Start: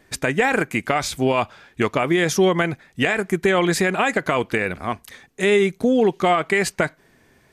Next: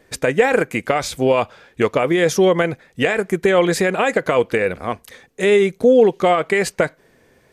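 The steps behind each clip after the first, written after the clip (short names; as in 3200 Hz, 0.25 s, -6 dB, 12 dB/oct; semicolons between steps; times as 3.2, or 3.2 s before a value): bell 500 Hz +9.5 dB 0.44 oct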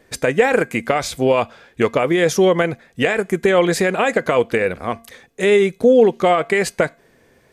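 resonator 230 Hz, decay 0.4 s, harmonics odd, mix 40%; gain +4.5 dB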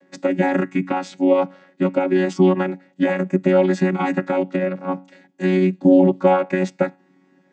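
chord vocoder bare fifth, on F#3; gain -1 dB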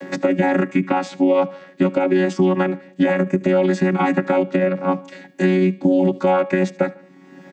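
limiter -9.5 dBFS, peak gain reduction 7.5 dB; feedback echo 74 ms, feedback 39%, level -22 dB; three-band squash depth 70%; gain +2 dB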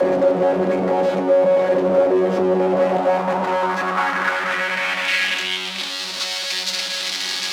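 infinite clipping; band-pass sweep 500 Hz -> 4300 Hz, 2.52–6.05; shoebox room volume 360 m³, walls furnished, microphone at 0.99 m; gain +7 dB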